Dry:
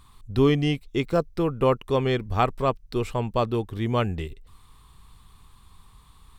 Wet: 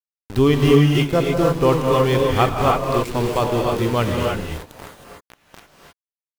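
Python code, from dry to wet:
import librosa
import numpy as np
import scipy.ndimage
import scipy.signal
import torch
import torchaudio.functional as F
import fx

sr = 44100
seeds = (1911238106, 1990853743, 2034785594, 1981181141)

y = fx.echo_stepped(x, sr, ms=722, hz=160.0, octaves=0.7, feedback_pct=70, wet_db=-11)
y = np.where(np.abs(y) >= 10.0 ** (-31.0 / 20.0), y, 0.0)
y = fx.rev_gated(y, sr, seeds[0], gate_ms=340, shape='rising', drr_db=-1.0)
y = F.gain(torch.from_numpy(y), 3.5).numpy()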